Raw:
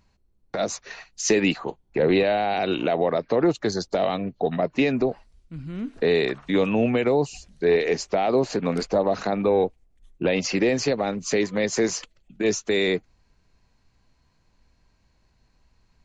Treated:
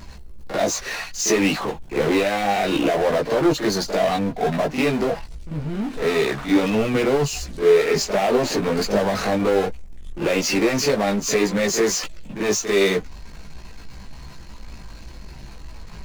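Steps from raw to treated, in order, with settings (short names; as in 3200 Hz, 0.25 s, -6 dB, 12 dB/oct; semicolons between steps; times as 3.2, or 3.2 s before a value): pre-echo 44 ms -17 dB; power-law curve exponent 0.5; chorus voices 6, 0.26 Hz, delay 17 ms, depth 3.5 ms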